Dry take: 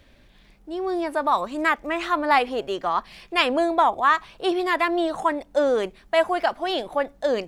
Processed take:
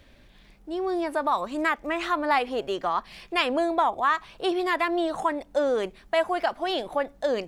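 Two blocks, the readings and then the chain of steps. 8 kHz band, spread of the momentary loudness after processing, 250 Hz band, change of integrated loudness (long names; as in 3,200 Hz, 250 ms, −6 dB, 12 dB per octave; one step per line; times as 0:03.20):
can't be measured, 5 LU, −2.5 dB, −3.5 dB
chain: downward compressor 1.5 to 1, threshold −26 dBFS, peak gain reduction 5 dB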